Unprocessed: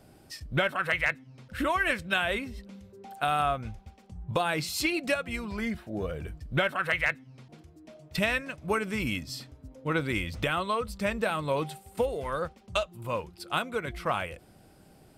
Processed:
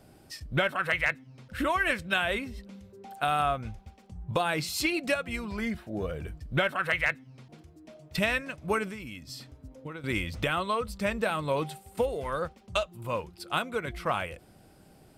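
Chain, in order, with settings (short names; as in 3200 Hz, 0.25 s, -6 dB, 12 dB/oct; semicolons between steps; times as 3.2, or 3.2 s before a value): 8.87–10.04 compressor 16:1, threshold -37 dBFS, peak gain reduction 15 dB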